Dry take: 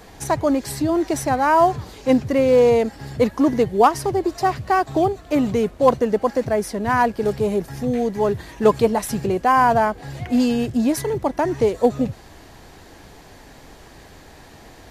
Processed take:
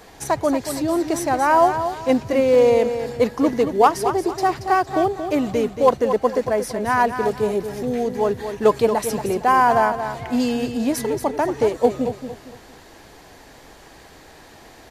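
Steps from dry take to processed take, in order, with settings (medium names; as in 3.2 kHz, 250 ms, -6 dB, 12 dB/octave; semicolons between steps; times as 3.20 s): tone controls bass -6 dB, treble 0 dB; on a send: feedback delay 229 ms, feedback 32%, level -9 dB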